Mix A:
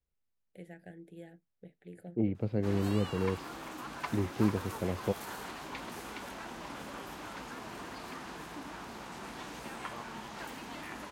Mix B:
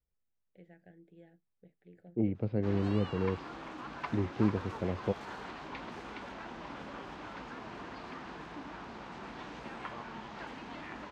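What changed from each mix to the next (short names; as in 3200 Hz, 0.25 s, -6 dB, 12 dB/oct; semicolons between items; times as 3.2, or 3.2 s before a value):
first voice -7.5 dB; master: add air absorption 160 m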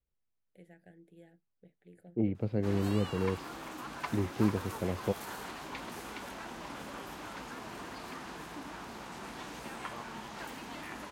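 master: remove air absorption 160 m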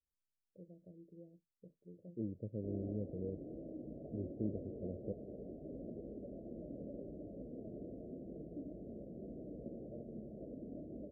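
first voice: remove Chebyshev band-stop 720–1600 Hz, order 2; second voice -11.0 dB; master: add steep low-pass 630 Hz 96 dB/oct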